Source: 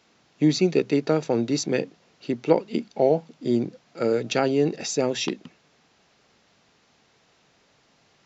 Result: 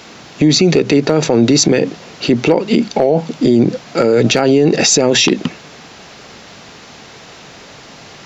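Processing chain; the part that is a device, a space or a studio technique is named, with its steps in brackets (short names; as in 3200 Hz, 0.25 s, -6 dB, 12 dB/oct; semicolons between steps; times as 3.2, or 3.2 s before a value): loud club master (compressor 2.5:1, threshold -23 dBFS, peak gain reduction 8 dB; hard clip -14.5 dBFS, distortion -30 dB; maximiser +26.5 dB); gain -1.5 dB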